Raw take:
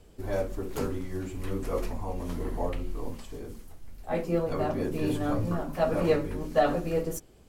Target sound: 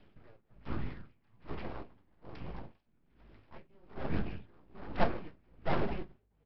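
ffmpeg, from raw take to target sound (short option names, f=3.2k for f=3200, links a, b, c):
-filter_complex "[0:a]highpass=f=160:t=q:w=0.5412,highpass=f=160:t=q:w=1.307,lowpass=f=2.9k:t=q:w=0.5176,lowpass=f=2.9k:t=q:w=0.7071,lowpass=f=2.9k:t=q:w=1.932,afreqshift=-340,asplit=2[a][b];[b]acrusher=bits=3:mode=log:mix=0:aa=0.000001,volume=-12dB[c];[a][c]amix=inputs=2:normalize=0,asetrate=51156,aresample=44100,aresample=11025,aeval=exprs='abs(val(0))':c=same,aresample=44100,asplit=4[d][e][f][g];[e]adelay=212,afreqshift=51,volume=-16.5dB[h];[f]adelay=424,afreqshift=102,volume=-25.1dB[i];[g]adelay=636,afreqshift=153,volume=-33.8dB[j];[d][h][i][j]amix=inputs=4:normalize=0,aeval=exprs='val(0)*pow(10,-33*(0.5-0.5*cos(2*PI*1.2*n/s))/20)':c=same"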